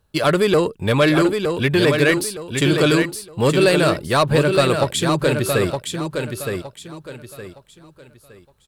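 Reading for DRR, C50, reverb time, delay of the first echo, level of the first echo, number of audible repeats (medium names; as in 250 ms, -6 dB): no reverb, no reverb, no reverb, 915 ms, -5.5 dB, 3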